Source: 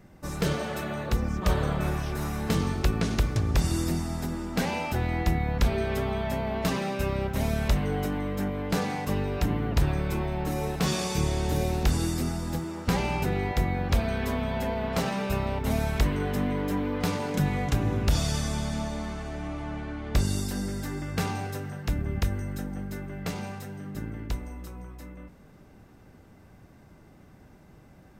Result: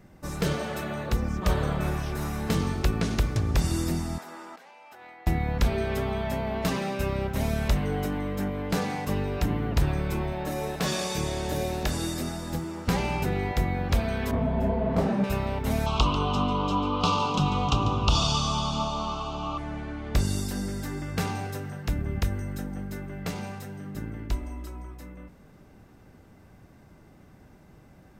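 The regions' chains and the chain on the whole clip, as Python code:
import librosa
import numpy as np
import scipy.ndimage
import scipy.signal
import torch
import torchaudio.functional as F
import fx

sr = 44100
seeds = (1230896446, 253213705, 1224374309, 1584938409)

y = fx.chain(x, sr, fx.highpass(hz=840.0, slope=12),
    fx.high_shelf(hz=2100.0, db=-11.5),
    fx.over_compress(threshold_db=-47.0, ratio=-1.0), at=(4.18, 5.27))
y = fx.chain(y, sr, fx.low_shelf(hz=160.0, db=-7.5),
    fx.small_body(hz=(600.0, 1700.0, 3700.0), ring_ms=90, db=11), at=(10.32, 12.52))
y = fx.chain(y, sr, fx.tilt_shelf(db=9.5, hz=1300.0),
    fx.doubler(ms=26.0, db=-11.5),
    fx.detune_double(cents=47), at=(14.31, 15.24))
y = fx.chain(y, sr, fx.curve_eq(hz=(580.0, 1200.0, 1800.0, 2800.0, 6500.0, 13000.0), db=(0, 15, -24, 12, 2, -22)),
    fx.echo_single(ms=144, db=-12.5), at=(15.86, 19.58))
y = fx.chain(y, sr, fx.high_shelf(hz=8600.0, db=-4.5),
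    fx.comb(ms=3.1, depth=0.69), at=(24.31, 24.94))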